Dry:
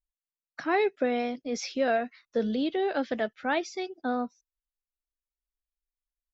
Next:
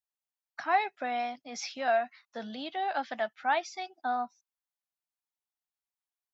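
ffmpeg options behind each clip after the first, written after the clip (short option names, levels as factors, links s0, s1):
-af "highpass=100,lowshelf=f=590:t=q:w=3:g=-8.5,volume=0.794"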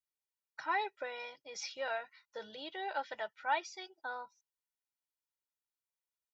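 -af "aecho=1:1:2.1:0.9,volume=0.447"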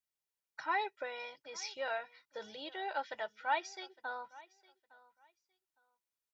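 -af "aecho=1:1:860|1720:0.0841|0.0168"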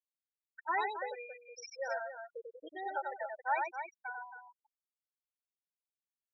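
-af "afftfilt=real='re*gte(hypot(re,im),0.0398)':imag='im*gte(hypot(re,im),0.0398)':win_size=1024:overlap=0.75,aecho=1:1:93.29|274.1:0.631|0.355"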